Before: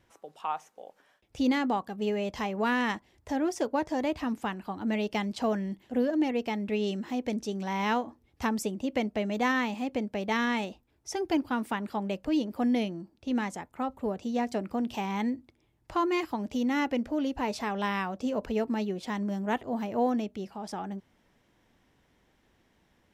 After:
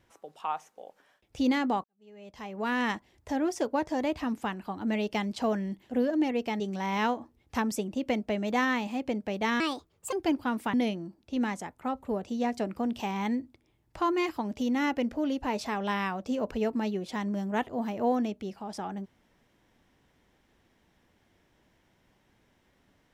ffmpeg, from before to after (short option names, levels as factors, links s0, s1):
-filter_complex "[0:a]asplit=6[s0][s1][s2][s3][s4][s5];[s0]atrim=end=1.84,asetpts=PTS-STARTPTS,afade=t=out:st=1.836:d=0.004:c=hsin[s6];[s1]atrim=start=1.84:end=6.602,asetpts=PTS-STARTPTS,afade=t=in:d=1:c=qua[s7];[s2]atrim=start=7.468:end=10.474[s8];[s3]atrim=start=10.47:end=11.18,asetpts=PTS-STARTPTS,asetrate=59535,aresample=44100,atrim=end_sample=23193,asetpts=PTS-STARTPTS[s9];[s4]atrim=start=11.176:end=11.792[s10];[s5]atrim=start=12.678[s11];[s6][s7]concat=n=2:v=0:a=1[s12];[s12][s8]acrossfade=d=0.004:c1=hsin:c2=hsin[s13];[s13][s9]acrossfade=d=0.004:c1=hsin:c2=hsin[s14];[s14][s10]acrossfade=d=0.004:c1=hsin:c2=hsin[s15];[s15][s11]acrossfade=d=0.004:c1=hsin:c2=hsin"